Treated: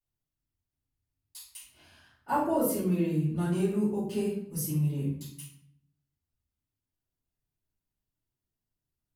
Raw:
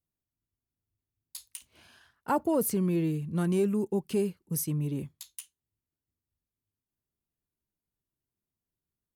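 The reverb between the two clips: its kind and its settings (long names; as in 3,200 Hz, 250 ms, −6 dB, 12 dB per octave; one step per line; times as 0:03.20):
rectangular room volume 110 cubic metres, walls mixed, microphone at 4 metres
level −13.5 dB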